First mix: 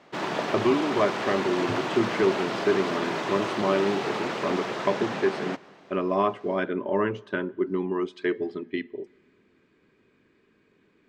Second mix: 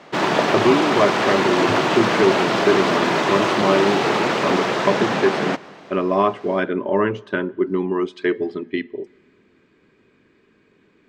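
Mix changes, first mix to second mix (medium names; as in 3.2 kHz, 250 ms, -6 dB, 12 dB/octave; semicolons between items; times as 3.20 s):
speech +6.0 dB; background +10.5 dB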